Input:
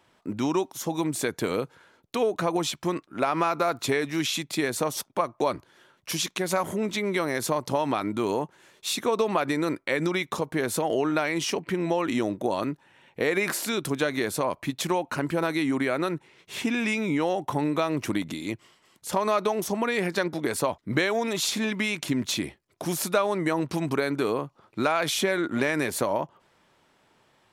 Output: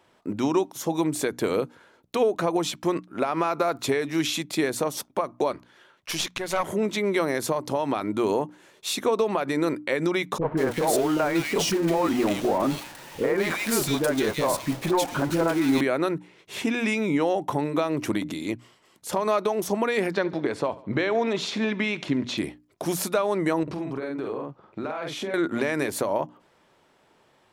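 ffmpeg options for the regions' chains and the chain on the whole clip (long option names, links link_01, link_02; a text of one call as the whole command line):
ffmpeg -i in.wav -filter_complex "[0:a]asettb=1/sr,asplit=3[link_01][link_02][link_03];[link_01]atrim=end=5.524[link_04];[link_02]atrim=start=5.52:end=6.69,asetpts=PTS-STARTPTS,afade=type=in:duration=0.004:curve=qsin,afade=type=out:start_time=1.166:duration=0.004:curve=qsin,equalizer=frequency=2300:width=0.36:gain=7.5,aeval=exprs='(tanh(3.55*val(0)+0.8)-tanh(0.8))/3.55':channel_layout=same[link_05];[link_03]atrim=start=6.686[link_06];[link_04][link_05]acrossfade=duration=0.004:curve1=hsin:curve2=qsin[link_07];[link_07][link_06]acrossfade=duration=0.004:curve1=qsin:curve2=hsin,asettb=1/sr,asplit=3[link_08][link_09][link_10];[link_08]atrim=end=10.384[link_11];[link_09]atrim=start=10.38:end=15.81,asetpts=PTS-STARTPTS,afade=type=in:duration=0.004:curve=qsin,afade=type=out:start_time=5.426:duration=0.004:curve=qsin,aeval=exprs='val(0)+0.5*0.0422*sgn(val(0))':channel_layout=same,agate=range=-33dB:threshold=-28dB:ratio=3:release=100:detection=peak,acrossover=split=440|2000[link_12][link_13][link_14];[link_13]adelay=30[link_15];[link_14]adelay=190[link_16];[link_12][link_15][link_16]amix=inputs=3:normalize=0,atrim=end_sample=239463[link_17];[link_10]atrim=start=15.806[link_18];[link_11][link_17]acrossfade=duration=0.004:curve1=hsin:curve2=qsin[link_19];[link_19][link_18]acrossfade=duration=0.004:curve1=qsin:curve2=hsin,asettb=1/sr,asplit=3[link_20][link_21][link_22];[link_20]atrim=end=20.114[link_23];[link_21]atrim=start=20.11:end=22.38,asetpts=PTS-STARTPTS,afade=type=in:duration=0.004:curve=qsin,afade=type=out:start_time=2.266:duration=0.004:curve=qsin,lowpass=4000,aecho=1:1:70|140|210:0.1|0.046|0.0212,atrim=end_sample=100107[link_24];[link_22]atrim=start=22.376[link_25];[link_23][link_24]acrossfade=duration=0.004:curve1=hsin:curve2=qsin[link_26];[link_26][link_25]acrossfade=duration=0.004:curve1=qsin:curve2=hsin,asettb=1/sr,asplit=3[link_27][link_28][link_29];[link_27]atrim=end=23.634[link_30];[link_28]atrim=start=23.63:end=25.34,asetpts=PTS-STARTPTS,afade=type=in:duration=0.004:curve=qsin,afade=type=out:start_time=1.706:duration=0.004:curve=qsin,aemphasis=mode=reproduction:type=75fm,asplit=2[link_31][link_32];[link_32]adelay=46,volume=-3dB[link_33];[link_31][link_33]amix=inputs=2:normalize=0,atrim=end_sample=75411,acompressor=threshold=-31dB:ratio=5:attack=3.2:release=140:knee=1:detection=peak[link_34];[link_29]atrim=start=25.336[link_35];[link_30][link_34]acrossfade=duration=0.004:curve1=hsin:curve2=qsin[link_36];[link_36][link_35]acrossfade=duration=0.004:curve1=qsin:curve2=hsin,equalizer=frequency=450:width=0.64:gain=4,bandreject=frequency=60:width_type=h:width=6,bandreject=frequency=120:width_type=h:width=6,bandreject=frequency=180:width_type=h:width=6,bandreject=frequency=240:width_type=h:width=6,bandreject=frequency=300:width_type=h:width=6,alimiter=limit=-12.5dB:level=0:latency=1:release=241" out.wav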